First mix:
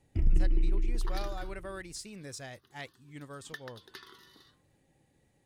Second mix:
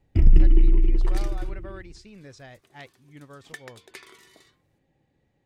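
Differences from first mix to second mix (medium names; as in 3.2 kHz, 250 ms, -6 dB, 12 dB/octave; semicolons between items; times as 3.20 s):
speech: add distance through air 140 m; first sound +10.5 dB; second sound: remove static phaser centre 2.3 kHz, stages 6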